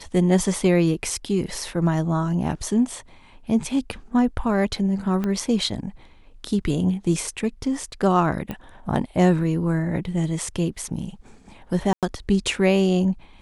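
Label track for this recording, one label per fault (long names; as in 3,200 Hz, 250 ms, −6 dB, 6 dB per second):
5.240000	5.240000	click −14 dBFS
8.510000	8.510000	click −17 dBFS
11.930000	12.030000	drop-out 97 ms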